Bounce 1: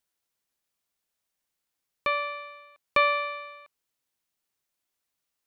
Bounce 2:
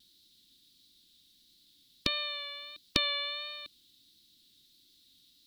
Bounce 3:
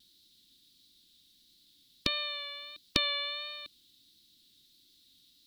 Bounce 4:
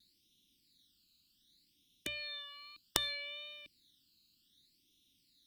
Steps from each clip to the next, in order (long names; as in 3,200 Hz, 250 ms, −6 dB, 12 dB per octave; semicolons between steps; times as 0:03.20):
drawn EQ curve 150 Hz 0 dB, 300 Hz +5 dB, 490 Hz −16 dB, 780 Hz −28 dB, 2,500 Hz −10 dB, 3,800 Hz +13 dB, 6,400 Hz −7 dB; pitch vibrato 1.5 Hz 30 cents; every bin compressed towards the loudest bin 2 to 1; level +8.5 dB
no processing that can be heard
all-pass phaser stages 12, 0.65 Hz, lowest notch 600–1,500 Hz; mains-hum notches 60/120 Hz; harmonic generator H 3 −7 dB, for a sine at −10.5 dBFS; level +5 dB